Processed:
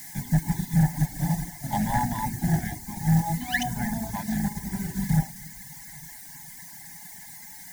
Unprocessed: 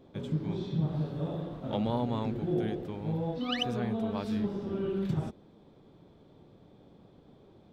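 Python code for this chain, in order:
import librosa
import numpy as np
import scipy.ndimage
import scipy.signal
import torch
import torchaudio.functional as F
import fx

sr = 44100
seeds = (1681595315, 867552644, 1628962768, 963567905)

p1 = fx.octave_divider(x, sr, octaves=2, level_db=-2.0)
p2 = fx.notch(p1, sr, hz=530.0, q=12.0)
p3 = fx.quant_dither(p2, sr, seeds[0], bits=6, dither='triangular')
p4 = p2 + (p3 * librosa.db_to_amplitude(-7.0))
p5 = fx.peak_eq(p4, sr, hz=880.0, db=5.0, octaves=0.95)
p6 = p5 + 0.31 * np.pad(p5, (int(6.9 * sr / 1000.0), 0))[:len(p5)]
p7 = fx.room_shoebox(p6, sr, seeds[1], volume_m3=1900.0, walls='mixed', distance_m=0.77)
p8 = fx.dereverb_blind(p7, sr, rt60_s=0.88)
p9 = fx.small_body(p8, sr, hz=(230.0, 1000.0, 2100.0), ring_ms=25, db=13)
p10 = np.clip(10.0 ** (15.0 / 20.0) * p9, -1.0, 1.0) / 10.0 ** (15.0 / 20.0)
p11 = fx.curve_eq(p10, sr, hz=(170.0, 480.0, 810.0, 1200.0, 1700.0, 2600.0, 6200.0), db=(0, -22, 8, -24, 14, -7, 10))
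y = fx.upward_expand(p11, sr, threshold_db=-33.0, expansion=1.5)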